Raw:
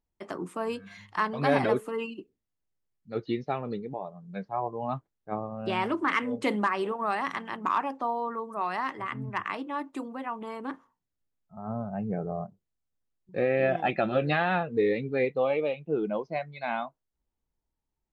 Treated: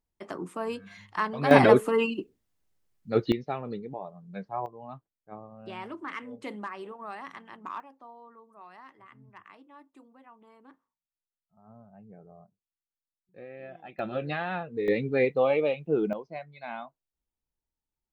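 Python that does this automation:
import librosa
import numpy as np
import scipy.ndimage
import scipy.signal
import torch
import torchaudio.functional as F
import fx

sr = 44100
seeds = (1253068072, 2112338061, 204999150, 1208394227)

y = fx.gain(x, sr, db=fx.steps((0.0, -1.0), (1.51, 8.0), (3.32, -2.0), (4.66, -11.0), (7.8, -19.0), (13.99, -6.0), (14.88, 2.5), (16.13, -7.0)))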